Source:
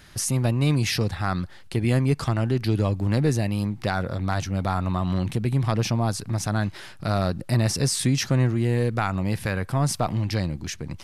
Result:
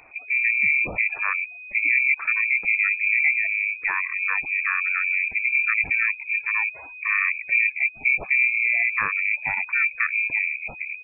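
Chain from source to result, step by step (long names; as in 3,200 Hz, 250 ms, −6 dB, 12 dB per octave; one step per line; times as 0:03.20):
pitch-shifted copies added −7 semitones −11 dB, +7 semitones −17 dB
gate on every frequency bin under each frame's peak −20 dB strong
voice inversion scrambler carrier 2,500 Hz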